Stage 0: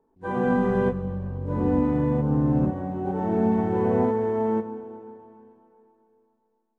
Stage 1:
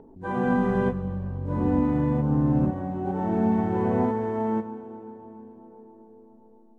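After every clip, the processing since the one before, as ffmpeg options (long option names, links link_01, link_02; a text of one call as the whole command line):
ffmpeg -i in.wav -filter_complex "[0:a]equalizer=frequency=460:width_type=o:width=0.31:gain=-5.5,acrossover=split=730[link_01][link_02];[link_01]acompressor=mode=upward:threshold=-34dB:ratio=2.5[link_03];[link_03][link_02]amix=inputs=2:normalize=0" out.wav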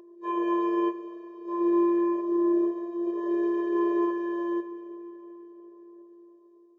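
ffmpeg -i in.wav -af "aresample=16000,aresample=44100,afftfilt=real='hypot(re,im)*cos(PI*b)':imag='0':win_size=512:overlap=0.75,afftfilt=real='re*eq(mod(floor(b*sr/1024/330),2),1)':imag='im*eq(mod(floor(b*sr/1024/330),2),1)':win_size=1024:overlap=0.75,volume=5dB" out.wav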